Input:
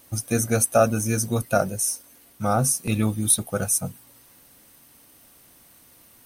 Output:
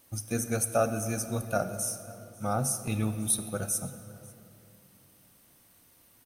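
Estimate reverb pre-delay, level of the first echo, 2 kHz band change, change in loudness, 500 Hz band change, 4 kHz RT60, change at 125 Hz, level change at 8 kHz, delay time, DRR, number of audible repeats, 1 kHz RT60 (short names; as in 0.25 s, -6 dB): 28 ms, -24.0 dB, -7.5 dB, -7.5 dB, -7.5 dB, 1.6 s, -7.5 dB, -8.0 dB, 0.544 s, 10.0 dB, 1, 2.7 s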